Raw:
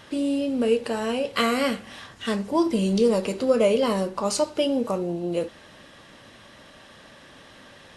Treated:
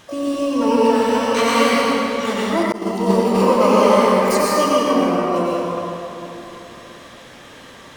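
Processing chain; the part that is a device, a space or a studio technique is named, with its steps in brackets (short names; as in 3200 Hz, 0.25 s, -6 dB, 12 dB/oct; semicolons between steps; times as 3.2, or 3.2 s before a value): shimmer-style reverb (harmoniser +12 st -4 dB; reverb RT60 3.4 s, pre-delay 87 ms, DRR -6.5 dB); 2.72–3.35 expander -6 dBFS; gain -1 dB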